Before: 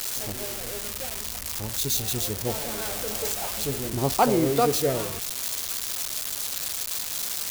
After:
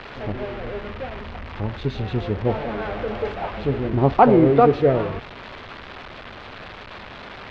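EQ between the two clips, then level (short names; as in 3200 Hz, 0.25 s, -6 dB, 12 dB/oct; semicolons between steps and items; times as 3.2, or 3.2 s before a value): LPF 2500 Hz 12 dB/oct; air absorption 350 m; +8.5 dB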